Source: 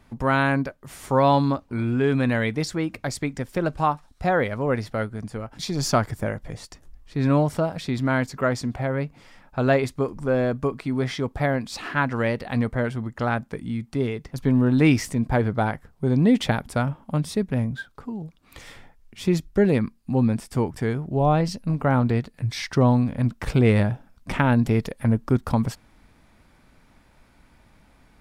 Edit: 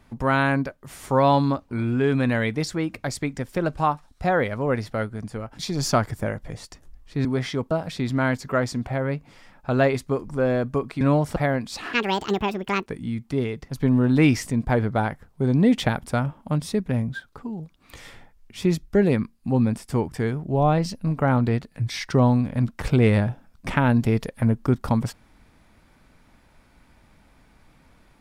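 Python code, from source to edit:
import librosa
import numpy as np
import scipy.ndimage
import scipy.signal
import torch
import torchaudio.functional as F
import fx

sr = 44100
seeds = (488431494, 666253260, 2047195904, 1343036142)

y = fx.edit(x, sr, fx.swap(start_s=7.25, length_s=0.35, other_s=10.9, other_length_s=0.46),
    fx.speed_span(start_s=11.93, length_s=1.56, speed=1.67), tone=tone)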